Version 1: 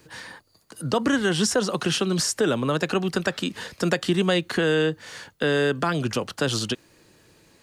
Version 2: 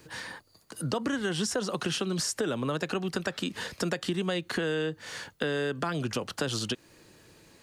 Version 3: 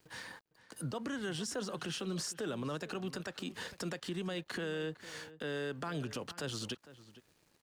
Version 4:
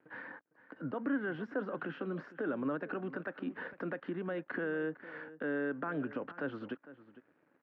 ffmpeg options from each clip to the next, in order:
ffmpeg -i in.wav -af "acompressor=threshold=-29dB:ratio=3" out.wav
ffmpeg -i in.wav -filter_complex "[0:a]alimiter=limit=-23.5dB:level=0:latency=1:release=36,aeval=exprs='sgn(val(0))*max(abs(val(0))-0.00158,0)':channel_layout=same,asplit=2[link_01][link_02];[link_02]adelay=454.8,volume=-16dB,highshelf=frequency=4000:gain=-10.2[link_03];[link_01][link_03]amix=inputs=2:normalize=0,volume=-6dB" out.wav
ffmpeg -i in.wav -af "highpass=190,equalizer=frequency=280:width_type=q:width=4:gain=9,equalizer=frequency=550:width_type=q:width=4:gain=4,equalizer=frequency=1500:width_type=q:width=4:gain=6,lowpass=frequency=2000:width=0.5412,lowpass=frequency=2000:width=1.3066" out.wav

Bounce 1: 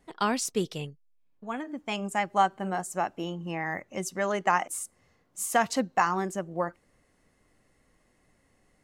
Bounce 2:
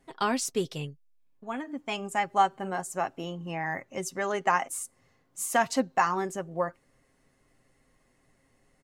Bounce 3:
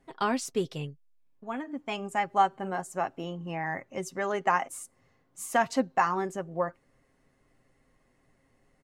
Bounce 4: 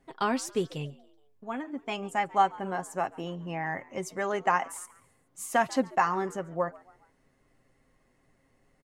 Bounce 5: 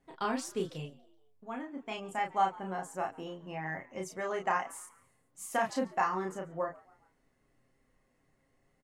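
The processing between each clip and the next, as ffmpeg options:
ffmpeg -i in.wav -af "aecho=1:1:7.5:0.39,volume=-1dB" out.wav
ffmpeg -i in.wav -af "highshelf=frequency=3700:gain=-7" out.wav
ffmpeg -i in.wav -filter_complex "[0:a]asplit=4[link_01][link_02][link_03][link_04];[link_02]adelay=140,afreqshift=96,volume=-22.5dB[link_05];[link_03]adelay=280,afreqshift=192,volume=-29.2dB[link_06];[link_04]adelay=420,afreqshift=288,volume=-36dB[link_07];[link_01][link_05][link_06][link_07]amix=inputs=4:normalize=0" out.wav
ffmpeg -i in.wav -filter_complex "[0:a]asplit=2[link_01][link_02];[link_02]adelay=32,volume=-3.5dB[link_03];[link_01][link_03]amix=inputs=2:normalize=0,volume=-6.5dB" out.wav

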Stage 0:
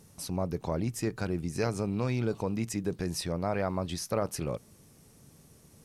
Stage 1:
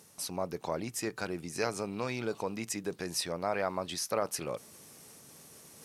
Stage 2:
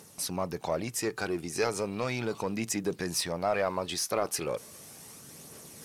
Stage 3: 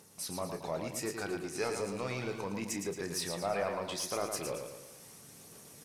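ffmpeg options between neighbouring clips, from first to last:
ffmpeg -i in.wav -af "areverse,acompressor=mode=upward:threshold=-43dB:ratio=2.5,areverse,highpass=frequency=630:poles=1,volume=2.5dB" out.wav
ffmpeg -i in.wav -filter_complex "[0:a]aphaser=in_gain=1:out_gain=1:delay=2.9:decay=0.29:speed=0.36:type=triangular,asplit=2[link_01][link_02];[link_02]asoftclip=type=tanh:threshold=-32dB,volume=-3dB[link_03];[link_01][link_03]amix=inputs=2:normalize=0" out.wav
ffmpeg -i in.wav -filter_complex "[0:a]asplit=2[link_01][link_02];[link_02]adelay=30,volume=-10dB[link_03];[link_01][link_03]amix=inputs=2:normalize=0,aecho=1:1:112|224|336|448|560|672:0.501|0.241|0.115|0.0554|0.0266|0.0128,volume=-6.5dB" out.wav

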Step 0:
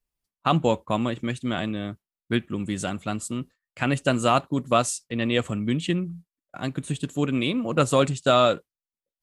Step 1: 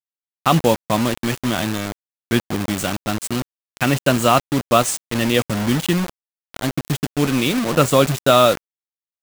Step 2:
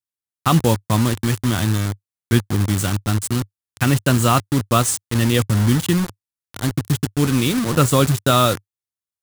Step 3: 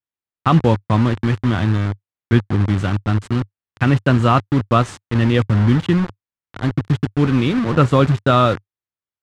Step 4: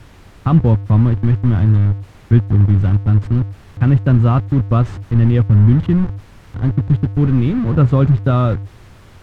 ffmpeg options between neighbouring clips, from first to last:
ffmpeg -i in.wav -af "acrusher=bits=4:mix=0:aa=0.000001,volume=5.5dB" out.wav
ffmpeg -i in.wav -af "equalizer=frequency=100:width_type=o:width=0.67:gain=12,equalizer=frequency=630:width_type=o:width=0.67:gain=-7,equalizer=frequency=2500:width_type=o:width=0.67:gain=-4,equalizer=frequency=10000:width_type=o:width=0.67:gain=4" out.wav
ffmpeg -i in.wav -af "lowpass=2500,volume=2dB" out.wav
ffmpeg -i in.wav -af "aeval=exprs='val(0)+0.5*0.0531*sgn(val(0))':channel_layout=same,aemphasis=mode=reproduction:type=riaa,volume=-7.5dB" out.wav

